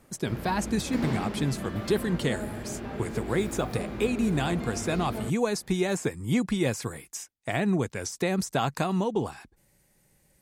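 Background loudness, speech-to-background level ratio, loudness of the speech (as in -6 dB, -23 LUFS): -35.5 LUFS, 6.5 dB, -29.0 LUFS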